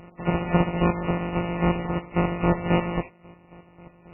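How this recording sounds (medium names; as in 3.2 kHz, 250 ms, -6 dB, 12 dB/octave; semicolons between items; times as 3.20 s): a buzz of ramps at a fixed pitch in blocks of 256 samples; chopped level 3.7 Hz, depth 65%, duty 35%; aliases and images of a low sample rate 1.6 kHz, jitter 0%; MP3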